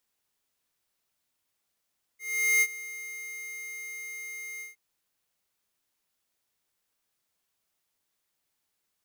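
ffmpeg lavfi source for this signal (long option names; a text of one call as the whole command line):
ffmpeg -f lavfi -i "aevalsrc='0.0841*(2*lt(mod(2120*t,1),0.5)-1)':duration=2.565:sample_rate=44100,afade=type=in:duration=0.426,afade=type=out:start_time=0.426:duration=0.051:silence=0.126,afade=type=out:start_time=2.42:duration=0.145" out.wav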